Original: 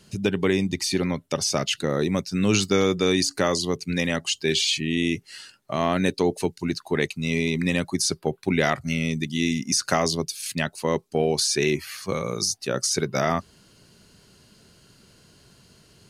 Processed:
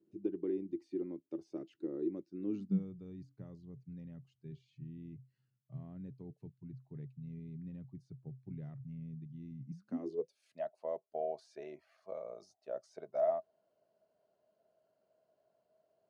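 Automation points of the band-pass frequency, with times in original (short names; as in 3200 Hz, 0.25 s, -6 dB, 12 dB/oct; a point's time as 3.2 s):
band-pass, Q 15
2.44 s 330 Hz
2.94 s 130 Hz
9.64 s 130 Hz
10.36 s 640 Hz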